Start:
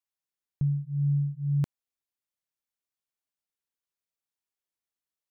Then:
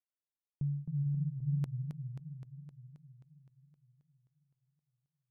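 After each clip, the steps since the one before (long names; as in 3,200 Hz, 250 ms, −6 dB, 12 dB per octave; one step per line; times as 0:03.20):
low-pass that shuts in the quiet parts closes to 980 Hz
feedback echo with a swinging delay time 262 ms, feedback 65%, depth 214 cents, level −7 dB
level −8 dB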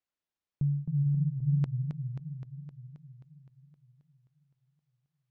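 high-frequency loss of the air 110 metres
level +6 dB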